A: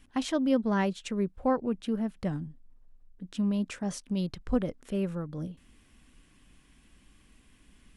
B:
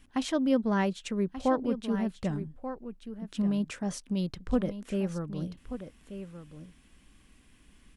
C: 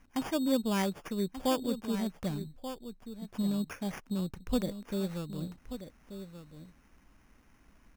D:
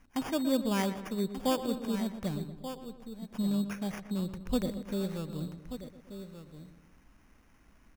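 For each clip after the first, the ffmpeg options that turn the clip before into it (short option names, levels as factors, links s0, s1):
-af "aecho=1:1:1184:0.282"
-af "acrusher=samples=11:mix=1:aa=0.000001,volume=0.708"
-filter_complex "[0:a]asplit=2[s0][s1];[s1]adelay=119,lowpass=f=2700:p=1,volume=0.282,asplit=2[s2][s3];[s3]adelay=119,lowpass=f=2700:p=1,volume=0.52,asplit=2[s4][s5];[s5]adelay=119,lowpass=f=2700:p=1,volume=0.52,asplit=2[s6][s7];[s7]adelay=119,lowpass=f=2700:p=1,volume=0.52,asplit=2[s8][s9];[s9]adelay=119,lowpass=f=2700:p=1,volume=0.52,asplit=2[s10][s11];[s11]adelay=119,lowpass=f=2700:p=1,volume=0.52[s12];[s0][s2][s4][s6][s8][s10][s12]amix=inputs=7:normalize=0"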